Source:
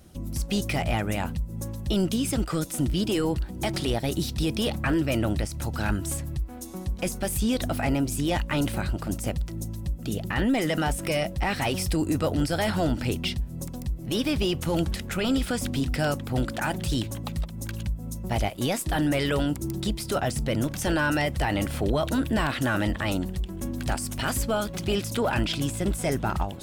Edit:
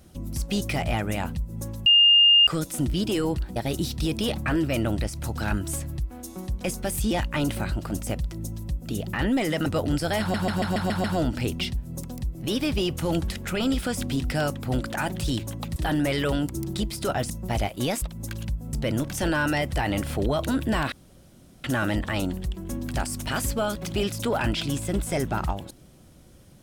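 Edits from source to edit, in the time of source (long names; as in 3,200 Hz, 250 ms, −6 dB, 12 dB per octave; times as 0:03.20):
0:01.86–0:02.47: beep over 2,820 Hz −12.5 dBFS
0:03.56–0:03.94: remove
0:07.49–0:08.28: remove
0:10.83–0:12.14: remove
0:12.68: stutter 0.14 s, 7 plays
0:17.40–0:18.11: swap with 0:18.83–0:20.37
0:22.56: splice in room tone 0.72 s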